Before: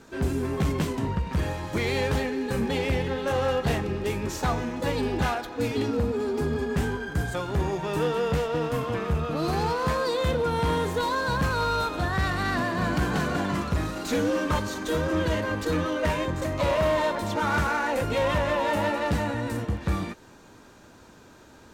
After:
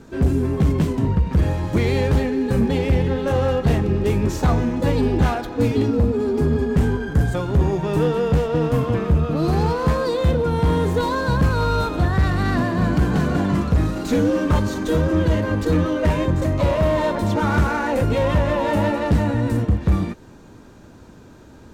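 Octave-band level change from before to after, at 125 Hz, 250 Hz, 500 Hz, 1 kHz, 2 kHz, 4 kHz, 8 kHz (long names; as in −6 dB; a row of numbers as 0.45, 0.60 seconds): +10.0, +8.5, +5.0, +2.5, +1.0, 0.0, 0.0 decibels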